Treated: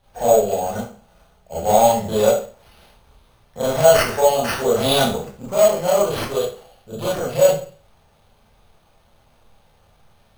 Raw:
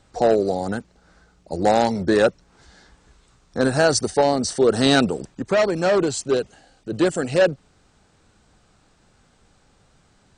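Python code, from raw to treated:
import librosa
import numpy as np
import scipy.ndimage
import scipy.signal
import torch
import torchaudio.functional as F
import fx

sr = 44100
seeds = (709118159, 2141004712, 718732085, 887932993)

y = fx.fixed_phaser(x, sr, hz=740.0, stages=4)
y = fx.rev_schroeder(y, sr, rt60_s=0.41, comb_ms=26, drr_db=-8.5)
y = np.repeat(y[::6], 6)[:len(y)]
y = F.gain(torch.from_numpy(y), -4.0).numpy()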